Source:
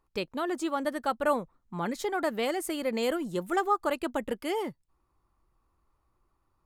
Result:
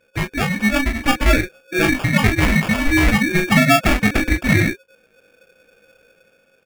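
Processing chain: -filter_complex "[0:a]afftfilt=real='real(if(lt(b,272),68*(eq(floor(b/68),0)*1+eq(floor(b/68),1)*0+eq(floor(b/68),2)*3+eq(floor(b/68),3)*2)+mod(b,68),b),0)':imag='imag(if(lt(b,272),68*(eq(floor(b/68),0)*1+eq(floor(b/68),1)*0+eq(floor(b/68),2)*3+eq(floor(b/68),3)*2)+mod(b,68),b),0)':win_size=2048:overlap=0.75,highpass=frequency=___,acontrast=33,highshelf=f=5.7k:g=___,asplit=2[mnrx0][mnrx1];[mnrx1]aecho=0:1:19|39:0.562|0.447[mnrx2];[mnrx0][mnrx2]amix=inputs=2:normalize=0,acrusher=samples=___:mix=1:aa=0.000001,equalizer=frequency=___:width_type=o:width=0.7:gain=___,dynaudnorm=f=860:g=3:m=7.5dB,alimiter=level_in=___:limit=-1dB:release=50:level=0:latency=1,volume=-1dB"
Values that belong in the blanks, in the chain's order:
1.2k, -8, 22, 2.1k, 15, 5.5dB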